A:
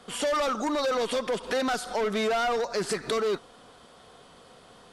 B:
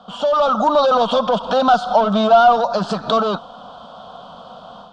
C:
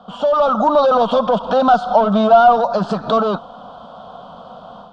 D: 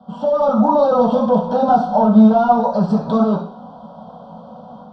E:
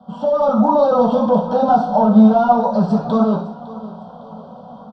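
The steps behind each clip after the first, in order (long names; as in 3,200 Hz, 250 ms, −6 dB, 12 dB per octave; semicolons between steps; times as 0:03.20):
drawn EQ curve 130 Hz 0 dB, 200 Hz +10 dB, 380 Hz −9 dB, 640 Hz +13 dB, 1,400 Hz +7 dB, 2,000 Hz −20 dB, 3,200 Hz +6 dB, 6,900 Hz −10 dB, 11,000 Hz −29 dB; automatic gain control gain up to 7.5 dB
high-shelf EQ 2,100 Hz −9.5 dB; level +2.5 dB
convolution reverb RT60 0.45 s, pre-delay 3 ms, DRR −6 dB; level −17 dB
repeating echo 557 ms, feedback 42%, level −17.5 dB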